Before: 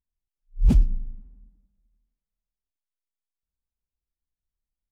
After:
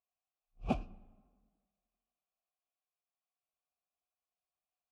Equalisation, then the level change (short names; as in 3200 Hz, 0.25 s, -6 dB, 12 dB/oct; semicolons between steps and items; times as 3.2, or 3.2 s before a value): vowel filter a; +13.0 dB